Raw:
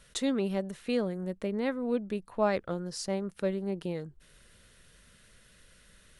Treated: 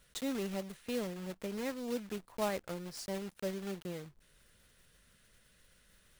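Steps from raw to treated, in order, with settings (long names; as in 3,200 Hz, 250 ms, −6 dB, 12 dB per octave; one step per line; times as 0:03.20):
one scale factor per block 3 bits
level −7.5 dB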